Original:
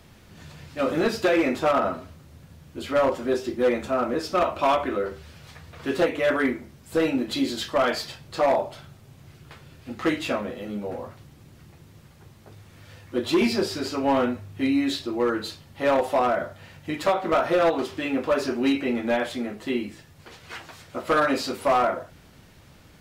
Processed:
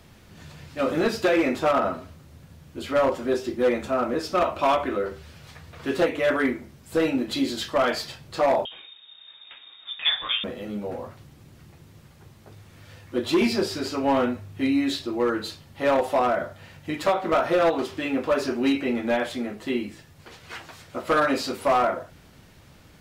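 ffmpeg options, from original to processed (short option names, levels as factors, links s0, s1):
-filter_complex "[0:a]asettb=1/sr,asplit=3[s0][s1][s2];[s0]atrim=end=8.654[s3];[s1]atrim=start=8.65:end=10.44,asetpts=PTS-STARTPTS,afade=t=in:d=0.004:c=qsin,afade=t=out:st=1.786:d=0.004:c=qsin,lowpass=f=3200:t=q:w=0.5098,lowpass=f=3200:t=q:w=0.6013,lowpass=f=3200:t=q:w=0.9,lowpass=f=3200:t=q:w=2.563,afreqshift=-3800[s4];[s2]atrim=start=10.436[s5];[s3][s4]acrossfade=d=0.004:c1=hsin:c2=qsin[s6];[s6][s5]acrossfade=d=0.004:c1=qsin:c2=hsin"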